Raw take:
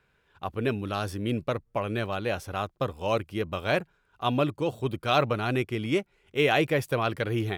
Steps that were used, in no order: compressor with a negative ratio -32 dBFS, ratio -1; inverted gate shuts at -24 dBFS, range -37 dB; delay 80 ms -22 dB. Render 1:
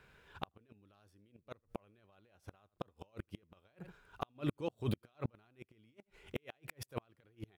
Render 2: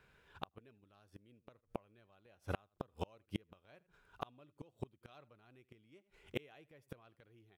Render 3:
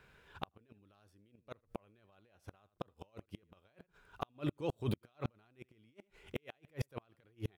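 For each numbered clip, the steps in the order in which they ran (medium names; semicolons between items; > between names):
compressor with a negative ratio > delay > inverted gate; delay > inverted gate > compressor with a negative ratio; delay > compressor with a negative ratio > inverted gate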